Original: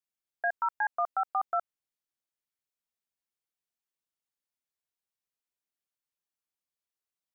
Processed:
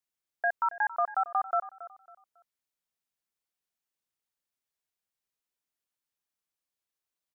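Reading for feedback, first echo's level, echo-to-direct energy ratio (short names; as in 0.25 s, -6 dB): 31%, -16.0 dB, -15.5 dB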